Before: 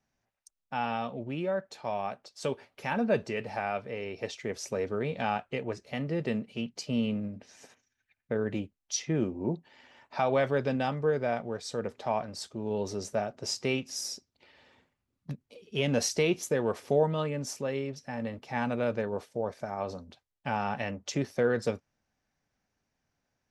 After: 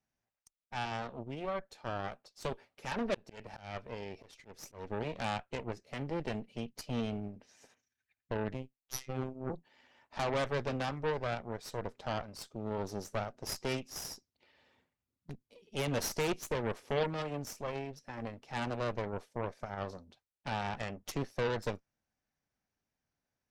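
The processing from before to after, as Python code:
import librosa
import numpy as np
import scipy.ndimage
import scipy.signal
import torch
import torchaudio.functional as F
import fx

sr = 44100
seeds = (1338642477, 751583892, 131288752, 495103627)

y = fx.cheby_harmonics(x, sr, harmonics=(8,), levels_db=(-13,), full_scale_db=-14.0)
y = fx.auto_swell(y, sr, attack_ms=248.0, at=(3.14, 4.9))
y = fx.robotise(y, sr, hz=130.0, at=(8.54, 9.5))
y = y * librosa.db_to_amplitude(-8.0)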